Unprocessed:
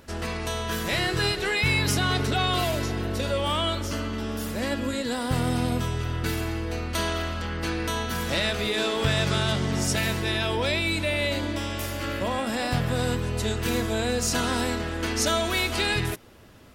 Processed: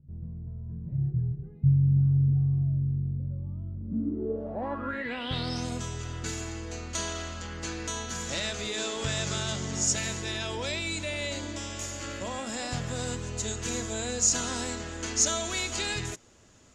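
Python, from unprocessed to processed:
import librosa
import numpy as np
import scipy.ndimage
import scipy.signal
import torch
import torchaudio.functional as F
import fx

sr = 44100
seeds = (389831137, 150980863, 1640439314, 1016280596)

y = fx.filter_sweep_lowpass(x, sr, from_hz=140.0, to_hz=6900.0, start_s=3.73, end_s=5.67, q=7.9)
y = F.gain(torch.from_numpy(y), -8.0).numpy()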